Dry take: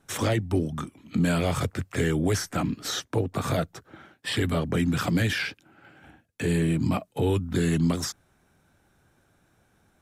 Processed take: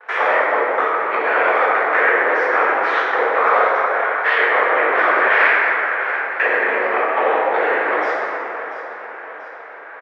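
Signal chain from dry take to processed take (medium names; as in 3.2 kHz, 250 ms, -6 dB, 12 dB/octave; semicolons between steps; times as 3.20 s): cycle switcher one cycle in 3, inverted; compression 6:1, threshold -36 dBFS, peak gain reduction 15.5 dB; tilt shelf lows -8 dB; on a send: feedback delay 686 ms, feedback 50%, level -15.5 dB; on the sum: sine folder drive 13 dB, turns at -14.5 dBFS; gate with hold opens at -38 dBFS; Chebyshev band-pass 450–2000 Hz, order 3; plate-style reverb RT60 3 s, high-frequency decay 0.45×, DRR -7 dB; trim +5.5 dB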